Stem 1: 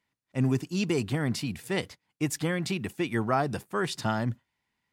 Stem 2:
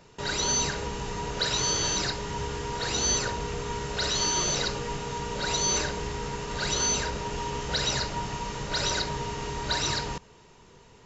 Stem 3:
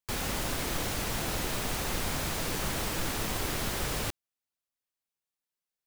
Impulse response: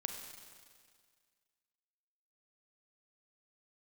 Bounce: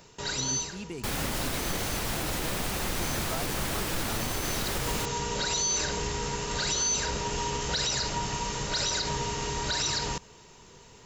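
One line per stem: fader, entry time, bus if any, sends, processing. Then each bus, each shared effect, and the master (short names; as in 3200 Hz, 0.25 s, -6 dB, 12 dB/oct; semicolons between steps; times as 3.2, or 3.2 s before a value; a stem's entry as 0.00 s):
-12.0 dB, 0.00 s, no send, dry
+0.5 dB, 0.00 s, no send, high shelf 5000 Hz +11 dB; auto duck -23 dB, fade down 1.25 s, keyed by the first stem
+1.5 dB, 0.95 s, no send, dry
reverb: off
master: limiter -19.5 dBFS, peak gain reduction 8.5 dB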